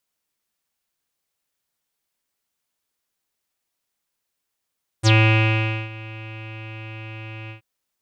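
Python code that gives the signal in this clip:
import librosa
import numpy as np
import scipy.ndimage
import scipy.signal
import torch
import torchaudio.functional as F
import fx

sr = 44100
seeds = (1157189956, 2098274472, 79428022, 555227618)

y = fx.sub_voice(sr, note=45, wave='square', cutoff_hz=2600.0, q=10.0, env_oct=2.0, env_s=0.08, attack_ms=38.0, decay_s=0.82, sustain_db=-22, release_s=0.11, note_s=2.47, slope=12)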